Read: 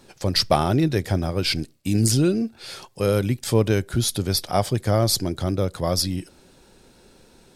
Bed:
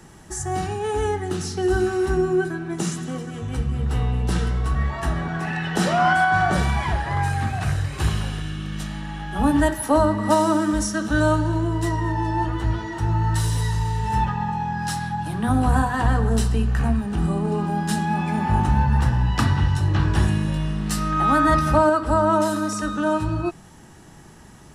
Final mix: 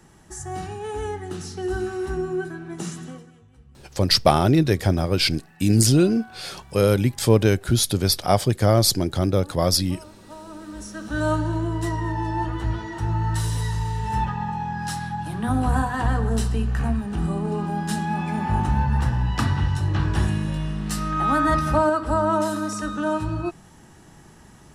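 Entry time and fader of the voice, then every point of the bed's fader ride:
3.75 s, +2.5 dB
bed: 3.07 s -6 dB
3.52 s -27 dB
10.2 s -27 dB
11.33 s -2.5 dB

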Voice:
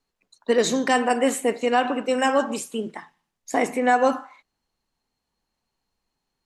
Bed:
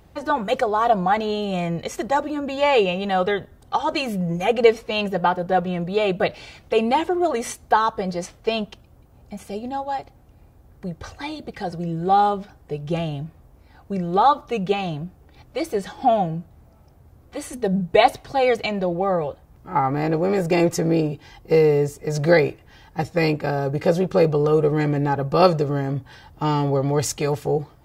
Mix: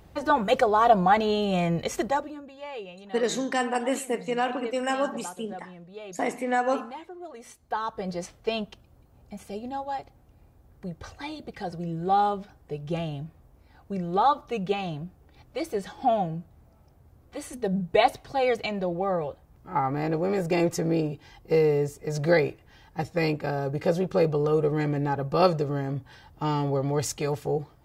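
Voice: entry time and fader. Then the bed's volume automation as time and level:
2.65 s, -6.0 dB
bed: 2.02 s -0.5 dB
2.54 s -20.5 dB
7.33 s -20.5 dB
8.11 s -5.5 dB

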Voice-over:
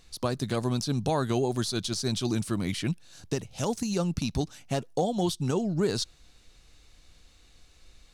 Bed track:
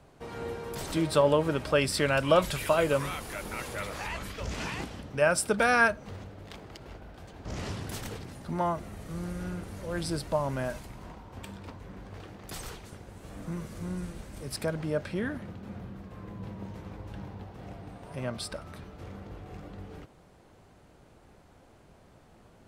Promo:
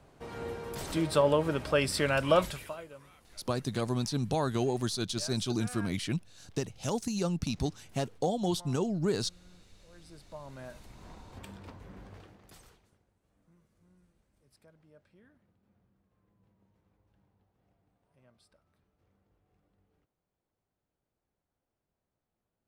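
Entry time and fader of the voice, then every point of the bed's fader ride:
3.25 s, -3.0 dB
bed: 2.42 s -2 dB
2.89 s -23.5 dB
9.98 s -23.5 dB
11.19 s -4 dB
12.06 s -4 dB
13.2 s -30 dB

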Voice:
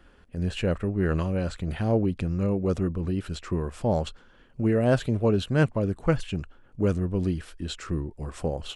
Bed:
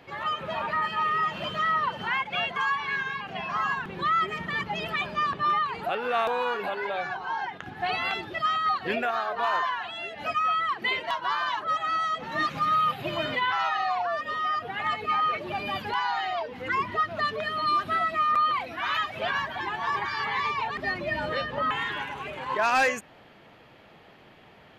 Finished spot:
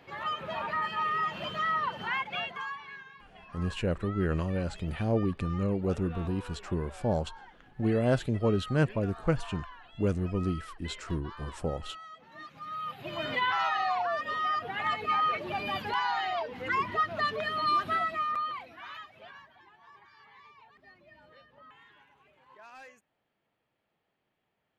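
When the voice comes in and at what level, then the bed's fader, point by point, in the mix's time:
3.20 s, -4.0 dB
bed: 2.29 s -4 dB
3.11 s -19.5 dB
12.51 s -19.5 dB
13.38 s -2 dB
17.9 s -2 dB
19.73 s -27.5 dB

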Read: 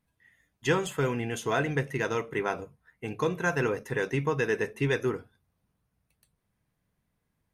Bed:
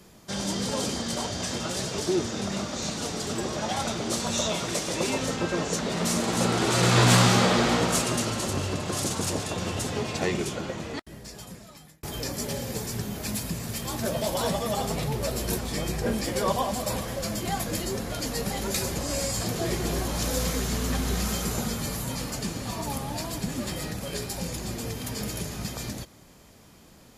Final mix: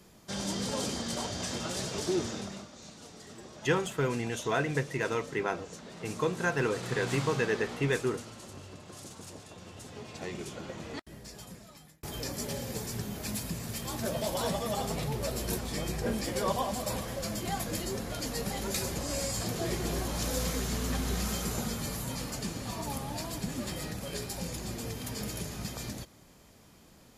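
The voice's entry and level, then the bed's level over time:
3.00 s, -2.0 dB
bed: 2.31 s -4.5 dB
2.73 s -18 dB
9.68 s -18 dB
11.06 s -4.5 dB

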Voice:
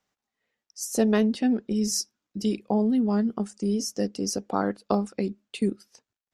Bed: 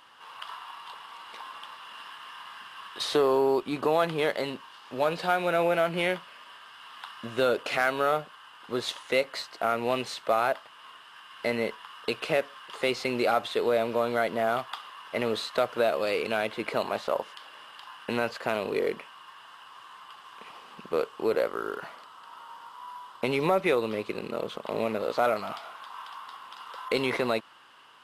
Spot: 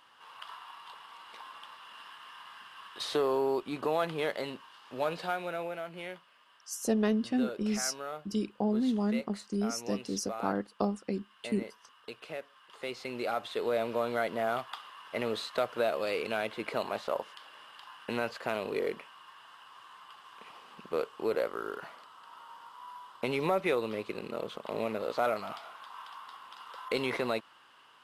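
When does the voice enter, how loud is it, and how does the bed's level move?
5.90 s, -6.0 dB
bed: 5.16 s -5.5 dB
5.8 s -14.5 dB
12.41 s -14.5 dB
13.83 s -4.5 dB

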